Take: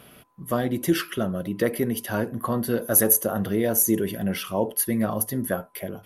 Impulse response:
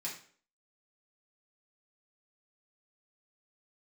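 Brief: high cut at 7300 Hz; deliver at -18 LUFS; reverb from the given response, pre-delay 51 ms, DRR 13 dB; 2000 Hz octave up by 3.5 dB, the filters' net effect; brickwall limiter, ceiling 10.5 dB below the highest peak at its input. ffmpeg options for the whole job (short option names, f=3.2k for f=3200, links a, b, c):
-filter_complex "[0:a]lowpass=7.3k,equalizer=f=2k:t=o:g=4.5,alimiter=limit=-18.5dB:level=0:latency=1,asplit=2[a][b];[1:a]atrim=start_sample=2205,adelay=51[c];[b][c]afir=irnorm=-1:irlink=0,volume=-13.5dB[d];[a][d]amix=inputs=2:normalize=0,volume=11.5dB"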